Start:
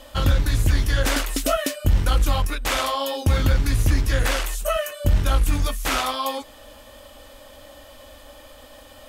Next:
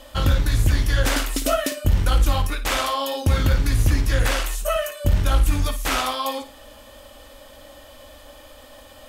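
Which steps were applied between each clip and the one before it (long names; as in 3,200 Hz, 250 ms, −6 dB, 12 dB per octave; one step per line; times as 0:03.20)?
flutter between parallel walls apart 9.5 metres, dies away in 0.29 s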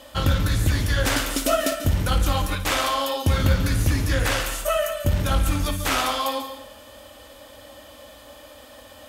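high-pass filter 64 Hz 12 dB per octave
on a send at −9 dB: convolution reverb RT60 0.65 s, pre-delay 136 ms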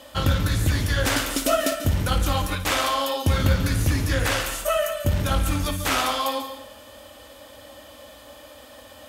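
high-pass filter 48 Hz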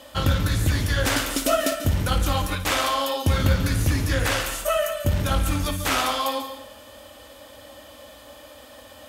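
no processing that can be heard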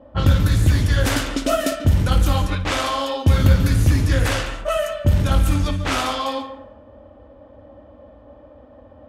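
low-pass that shuts in the quiet parts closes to 670 Hz, open at −17.5 dBFS
low-shelf EQ 330 Hz +7 dB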